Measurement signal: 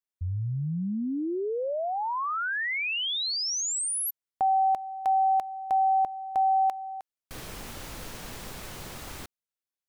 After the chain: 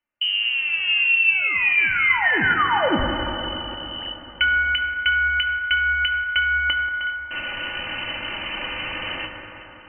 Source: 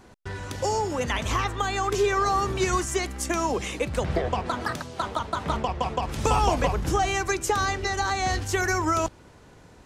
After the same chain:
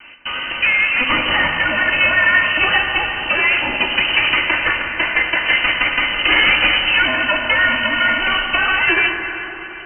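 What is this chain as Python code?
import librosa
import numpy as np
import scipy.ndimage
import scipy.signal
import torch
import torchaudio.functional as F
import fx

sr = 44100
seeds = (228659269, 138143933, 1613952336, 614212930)

p1 = fx.lower_of_two(x, sr, delay_ms=3.3)
p2 = fx.low_shelf(p1, sr, hz=210.0, db=-5.0)
p3 = fx.rider(p2, sr, range_db=5, speed_s=2.0)
p4 = p2 + (p3 * 10.0 ** (-0.5 / 20.0))
p5 = 10.0 ** (-11.5 / 20.0) * np.tanh(p4 / 10.0 ** (-11.5 / 20.0))
p6 = fx.freq_invert(p5, sr, carrier_hz=3000)
p7 = p6 + fx.echo_alternate(p6, sr, ms=185, hz=1300.0, feedback_pct=70, wet_db=-12.5, dry=0)
p8 = fx.rev_fdn(p7, sr, rt60_s=3.8, lf_ratio=1.0, hf_ratio=0.3, size_ms=57.0, drr_db=2.5)
y = p8 * 10.0 ** (6.0 / 20.0)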